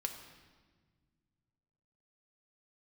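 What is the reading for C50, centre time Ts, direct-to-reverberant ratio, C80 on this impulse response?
7.5 dB, 27 ms, 3.0 dB, 9.0 dB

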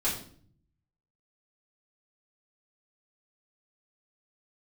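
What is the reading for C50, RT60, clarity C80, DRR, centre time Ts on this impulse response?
6.0 dB, 0.55 s, 10.0 dB, -9.0 dB, 32 ms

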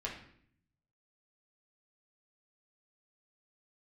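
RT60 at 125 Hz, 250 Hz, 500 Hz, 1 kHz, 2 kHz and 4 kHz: 1.2 s, 0.90 s, 0.65 s, 0.60 s, 0.60 s, 0.50 s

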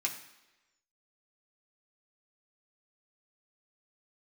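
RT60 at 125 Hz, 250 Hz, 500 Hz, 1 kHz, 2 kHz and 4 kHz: 0.80 s, 0.95 s, 1.1 s, 1.0 s, 1.1 s, 1.0 s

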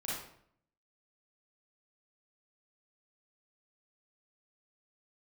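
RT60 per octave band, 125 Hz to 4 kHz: 0.80 s, 0.80 s, 0.65 s, 0.60 s, 0.55 s, 0.45 s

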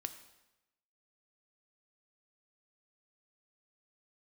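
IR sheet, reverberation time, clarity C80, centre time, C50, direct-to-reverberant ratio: 0.95 s, 13.0 dB, 10 ms, 11.5 dB, 8.5 dB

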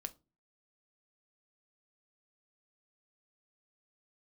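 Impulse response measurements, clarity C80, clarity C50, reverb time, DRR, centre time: 28.0 dB, 21.0 dB, 0.30 s, 9.0 dB, 4 ms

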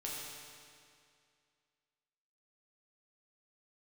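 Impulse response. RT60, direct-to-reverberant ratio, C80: 2.3 s, -5.0 dB, 0.0 dB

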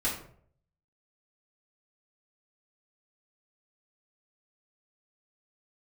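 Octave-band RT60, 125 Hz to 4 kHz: 0.80 s, 0.60 s, 0.65 s, 0.50 s, 0.45 s, 0.35 s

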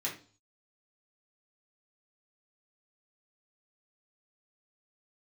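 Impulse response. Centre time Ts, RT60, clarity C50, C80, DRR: 22 ms, 0.40 s, 9.0 dB, 14.5 dB, -5.0 dB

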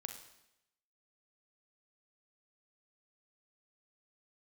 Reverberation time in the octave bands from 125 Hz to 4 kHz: 0.85 s, 0.90 s, 0.90 s, 0.85 s, 0.85 s, 0.85 s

